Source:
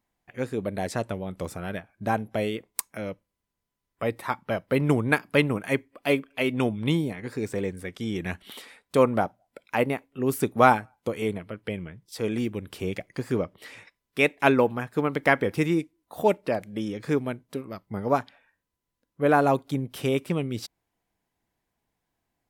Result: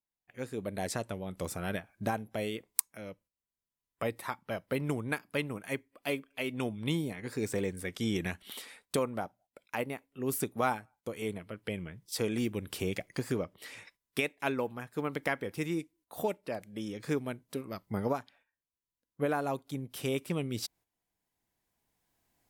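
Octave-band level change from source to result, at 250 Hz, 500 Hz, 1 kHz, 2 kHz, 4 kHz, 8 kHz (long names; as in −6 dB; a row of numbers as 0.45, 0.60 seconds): −8.0, −9.5, −11.0, −9.0, −4.5, +0.5 decibels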